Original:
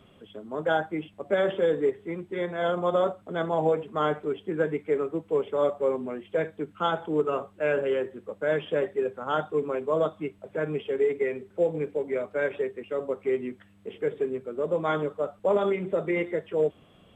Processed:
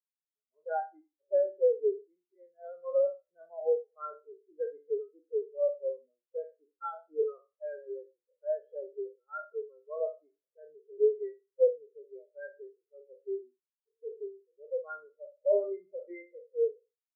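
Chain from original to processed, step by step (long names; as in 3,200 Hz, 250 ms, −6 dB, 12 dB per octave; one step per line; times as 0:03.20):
peak hold with a decay on every bin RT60 1.08 s
tilt shelving filter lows −4.5 dB, about 720 Hz
every bin expanded away from the loudest bin 4 to 1
level −5.5 dB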